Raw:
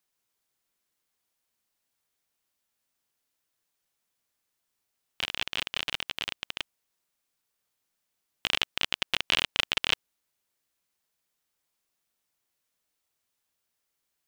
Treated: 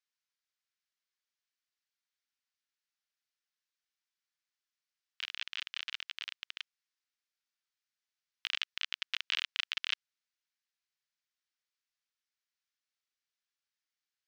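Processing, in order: Chebyshev band-pass 1.5–5.5 kHz, order 2; trim -7 dB

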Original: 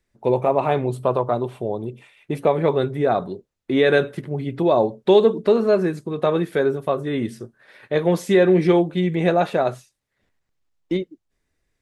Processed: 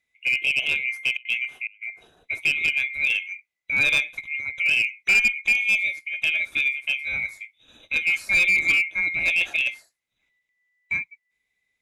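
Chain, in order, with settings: split-band scrambler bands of 2 kHz; 1.13–1.81 s: trance gate "xx..x.xxx" 180 bpm -24 dB; one-sided clip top -11.5 dBFS; trim -4 dB

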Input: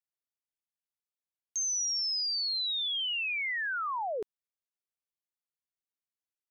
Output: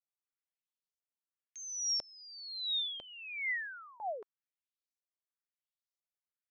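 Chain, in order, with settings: peaking EQ 870 Hz -4.5 dB 0.32 oct; LFO band-pass saw up 1 Hz 600–6600 Hz

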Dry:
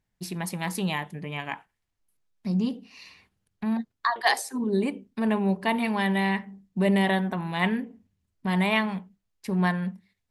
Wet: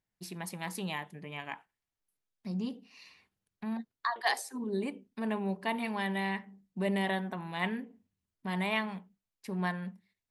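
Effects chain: bass shelf 130 Hz -8.5 dB; trim -7 dB

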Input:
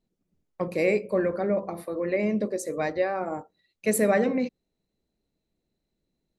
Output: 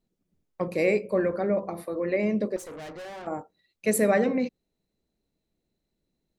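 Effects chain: 2.56–3.27 s: valve stage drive 38 dB, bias 0.6

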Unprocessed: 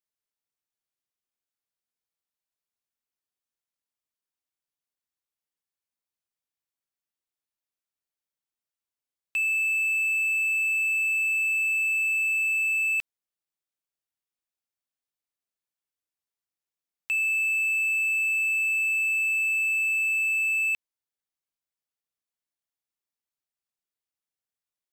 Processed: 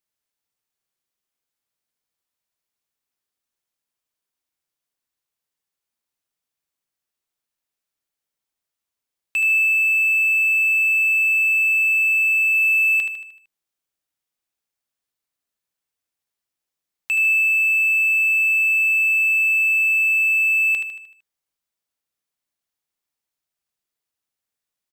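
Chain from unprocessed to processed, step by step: 12.54–12.96 s: companding laws mixed up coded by mu; feedback delay 76 ms, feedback 50%, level -7 dB; trim +5.5 dB

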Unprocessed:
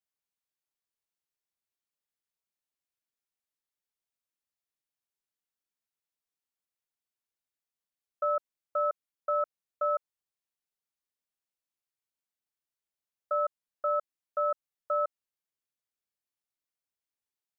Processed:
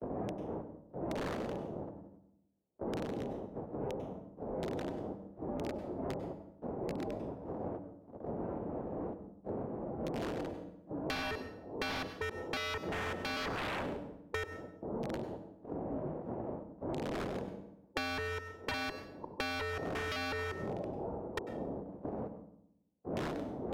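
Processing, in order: chunks repeated in reverse 396 ms, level -7 dB; wind noise 620 Hz -45 dBFS; low-pass 1.1 kHz 24 dB/octave; gate -57 dBFS, range -56 dB; spectral noise reduction 7 dB; high-pass 350 Hz 6 dB/octave; reverse; upward compressor, threshold -41 dBFS; reverse; wavefolder -39.5 dBFS; speed mistake 45 rpm record played at 33 rpm; on a send at -12.5 dB: reverberation RT60 0.55 s, pre-delay 92 ms; on the sum: three bands compressed up and down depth 100%; trim +8.5 dB

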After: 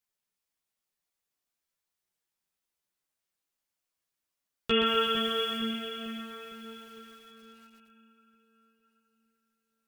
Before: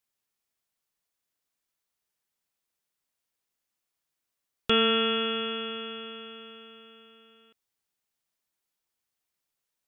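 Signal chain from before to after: 4.86–5.57 s: word length cut 8-bit, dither none; 6.32–6.87 s: hum notches 50/100/150/200/250/300/350/400/450 Hz; on a send: two-band feedback delay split 2 kHz, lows 455 ms, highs 341 ms, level -9 dB; on the sum: chorus voices 4, 0.42 Hz, delay 14 ms, depth 3.6 ms; bit-crushed delay 124 ms, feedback 55%, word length 9-bit, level -6 dB

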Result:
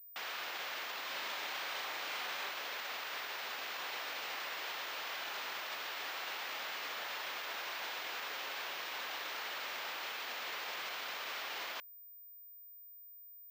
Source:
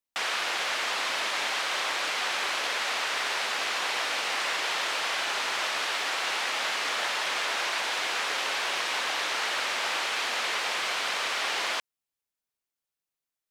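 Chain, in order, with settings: peak limiter -27.5 dBFS, peak gain reduction 10.5 dB; 1.05–2.51 s: doubling 40 ms -4 dB; class-D stage that switches slowly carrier 15 kHz; trim -5.5 dB

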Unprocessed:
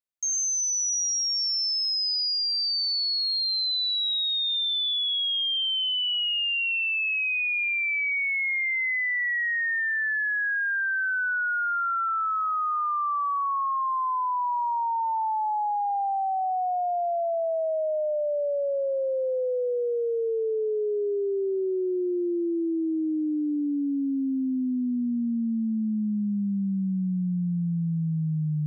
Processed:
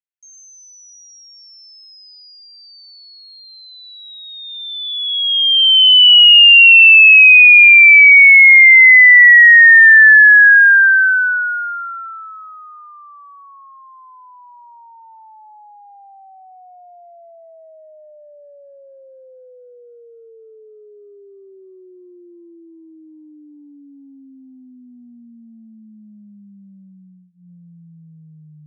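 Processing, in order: high-order bell 2.2 kHz +15 dB 1.3 oct; hum notches 60/120/180 Hz; upward expansion 2.5:1, over -27 dBFS; trim +6.5 dB

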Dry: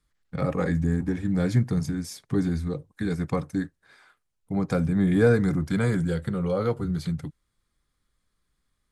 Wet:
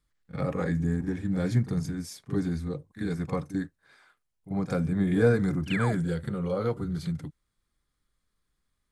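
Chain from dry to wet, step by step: painted sound fall, 5.70–5.93 s, 570–3200 Hz -30 dBFS; pre-echo 42 ms -12.5 dB; trim -3.5 dB

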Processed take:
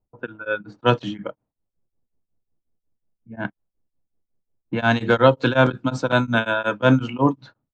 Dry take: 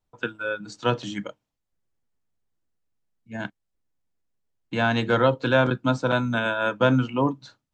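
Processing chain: level-controlled noise filter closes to 640 Hz, open at -18 dBFS; tremolo of two beating tones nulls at 5.5 Hz; trim +6.5 dB

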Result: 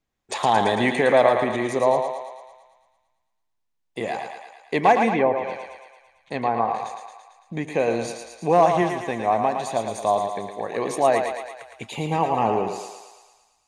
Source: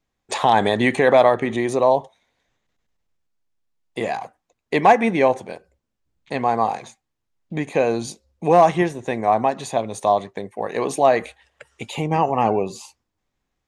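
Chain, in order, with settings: thinning echo 112 ms, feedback 64%, high-pass 440 Hz, level -5 dB; 5.10–6.75 s: low-pass that closes with the level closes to 1.2 kHz, closed at -11.5 dBFS; trim -3.5 dB

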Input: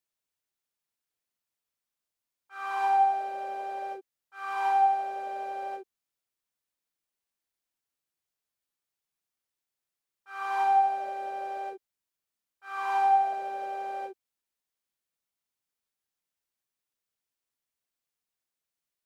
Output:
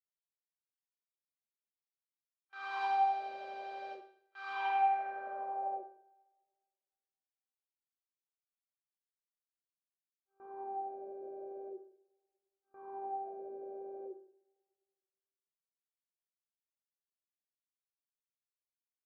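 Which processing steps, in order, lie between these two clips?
low-pass sweep 4.2 kHz -> 380 Hz, 4.47–6.23 s; gate with hold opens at -40 dBFS; two-slope reverb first 0.56 s, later 1.9 s, from -25 dB, DRR 4.5 dB; trim -8.5 dB

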